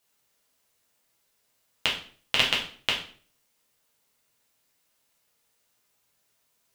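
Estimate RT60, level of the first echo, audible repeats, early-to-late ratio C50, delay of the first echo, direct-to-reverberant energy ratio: 0.45 s, no echo audible, no echo audible, 7.0 dB, no echo audible, −4.0 dB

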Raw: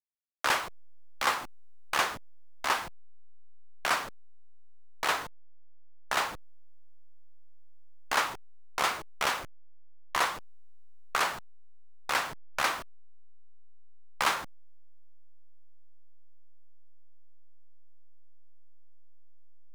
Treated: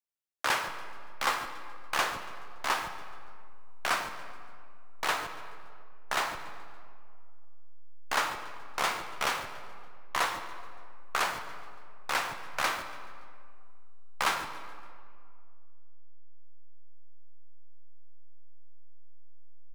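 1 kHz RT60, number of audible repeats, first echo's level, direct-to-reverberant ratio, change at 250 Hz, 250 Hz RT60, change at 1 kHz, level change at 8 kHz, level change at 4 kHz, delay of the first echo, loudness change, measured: 2.1 s, 2, −17.0 dB, 7.5 dB, −0.5 dB, 2.5 s, −1.0 dB, −1.0 dB, −1.0 dB, 142 ms, −1.5 dB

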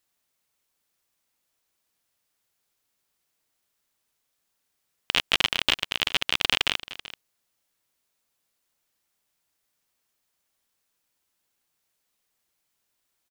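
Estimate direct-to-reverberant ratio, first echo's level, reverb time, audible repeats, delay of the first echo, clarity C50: no reverb audible, −16.0 dB, no reverb audible, 1, 384 ms, no reverb audible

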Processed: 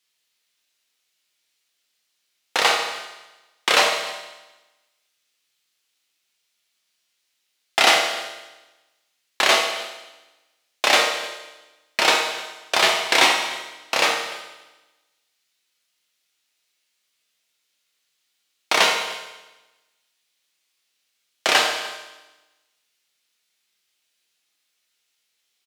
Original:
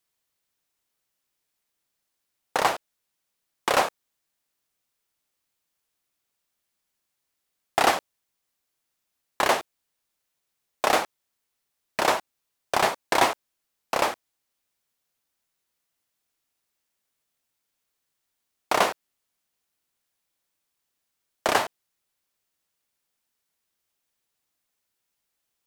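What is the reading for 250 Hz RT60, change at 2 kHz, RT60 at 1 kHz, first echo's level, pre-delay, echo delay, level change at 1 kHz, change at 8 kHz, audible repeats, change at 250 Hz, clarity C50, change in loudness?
1.2 s, +9.0 dB, 1.1 s, −20.0 dB, 6 ms, 300 ms, +2.0 dB, +8.0 dB, 1, 0.0 dB, 4.0 dB, +5.5 dB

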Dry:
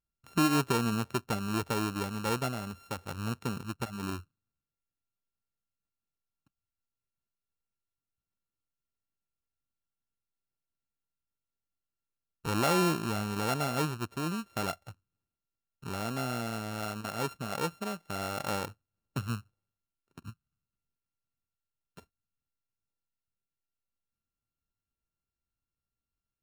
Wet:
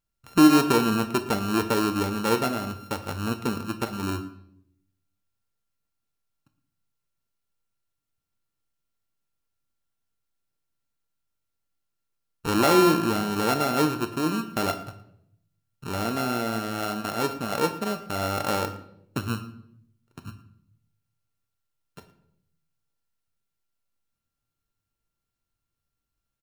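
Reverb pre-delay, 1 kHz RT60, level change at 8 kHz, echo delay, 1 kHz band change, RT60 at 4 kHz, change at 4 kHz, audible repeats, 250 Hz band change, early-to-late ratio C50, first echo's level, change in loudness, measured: 7 ms, 0.65 s, +5.5 dB, 114 ms, +7.5 dB, 0.55 s, +7.0 dB, 1, +9.5 dB, 12.0 dB, −19.5 dB, +8.0 dB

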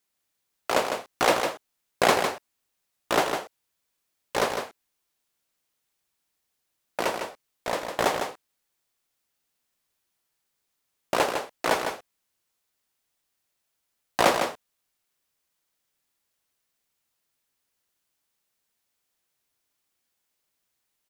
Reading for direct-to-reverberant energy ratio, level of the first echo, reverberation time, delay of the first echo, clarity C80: no reverb audible, −6.5 dB, no reverb audible, 154 ms, no reverb audible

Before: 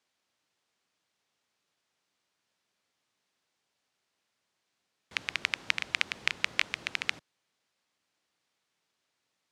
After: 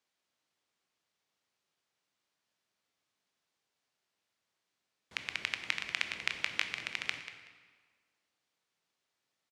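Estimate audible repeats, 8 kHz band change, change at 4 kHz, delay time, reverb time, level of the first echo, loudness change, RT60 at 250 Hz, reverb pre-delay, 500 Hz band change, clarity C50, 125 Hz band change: 2, −4.0 dB, −4.0 dB, 188 ms, 1.6 s, −13.0 dB, −4.5 dB, 1.5 s, 15 ms, −4.0 dB, 7.5 dB, −3.5 dB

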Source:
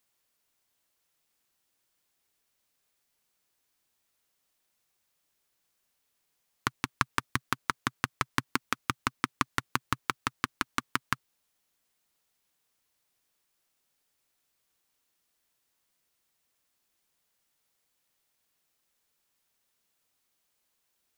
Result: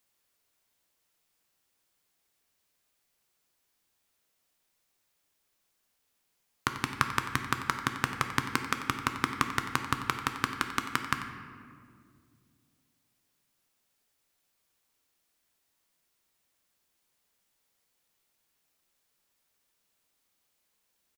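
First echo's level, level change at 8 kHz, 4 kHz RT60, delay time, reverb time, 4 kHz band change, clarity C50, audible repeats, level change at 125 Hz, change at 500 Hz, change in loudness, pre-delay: −13.5 dB, +0.5 dB, 1.1 s, 91 ms, 2.2 s, +1.0 dB, 6.5 dB, 1, +2.0 dB, +2.0 dB, +1.5 dB, 10 ms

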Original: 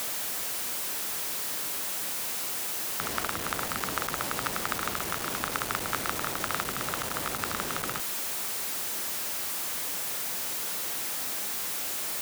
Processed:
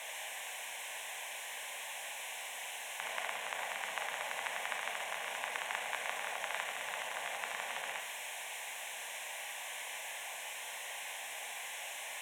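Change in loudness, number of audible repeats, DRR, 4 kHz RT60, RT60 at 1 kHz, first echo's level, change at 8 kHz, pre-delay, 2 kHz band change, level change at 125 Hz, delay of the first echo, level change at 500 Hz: −10.0 dB, no echo audible, 3.5 dB, 0.85 s, 0.95 s, no echo audible, −11.5 dB, 22 ms, −3.0 dB, below −25 dB, no echo audible, −7.5 dB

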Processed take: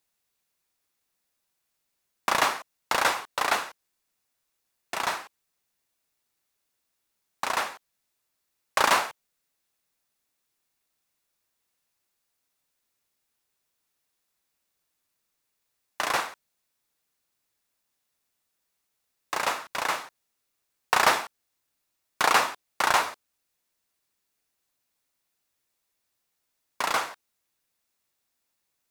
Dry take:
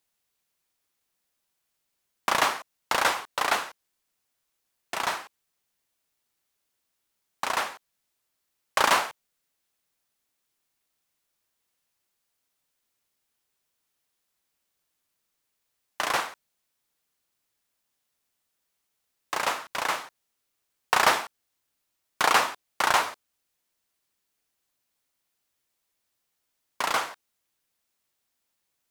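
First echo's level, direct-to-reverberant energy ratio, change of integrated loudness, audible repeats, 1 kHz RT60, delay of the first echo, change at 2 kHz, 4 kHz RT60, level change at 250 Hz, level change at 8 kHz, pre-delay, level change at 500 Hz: no echo audible, no reverb audible, 0.0 dB, no echo audible, no reverb audible, no echo audible, 0.0 dB, no reverb audible, 0.0 dB, 0.0 dB, no reverb audible, 0.0 dB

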